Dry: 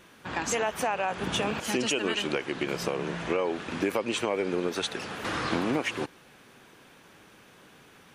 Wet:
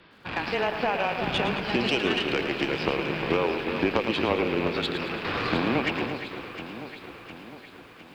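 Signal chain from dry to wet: rattle on loud lows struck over -44 dBFS, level -25 dBFS; resampled via 11.025 kHz; Chebyshev shaper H 2 -18 dB, 3 -17 dB, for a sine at -13 dBFS; echo whose repeats swap between lows and highs 354 ms, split 2.3 kHz, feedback 73%, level -8 dB; frequency shift -14 Hz; bit-crushed delay 110 ms, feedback 55%, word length 10-bit, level -9 dB; trim +5 dB

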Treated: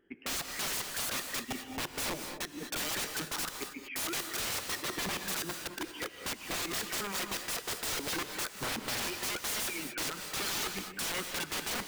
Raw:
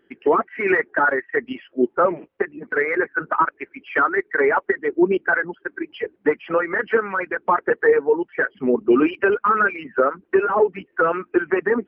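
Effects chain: bass shelf 87 Hz +11 dB; integer overflow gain 21.5 dB; on a send: reverberation, pre-delay 3 ms, DRR 6 dB; on the sum: trim -8.5 dB

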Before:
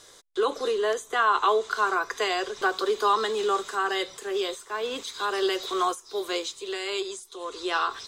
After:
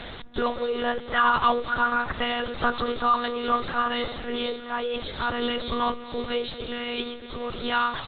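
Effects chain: jump at every zero crossing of -32 dBFS; comb 3.5 ms, depth 41%; reverse; upward compressor, threshold -29 dBFS; reverse; band-passed feedback delay 234 ms, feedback 69%, band-pass 300 Hz, level -10.5 dB; monotone LPC vocoder at 8 kHz 240 Hz; Opus 20 kbps 48 kHz

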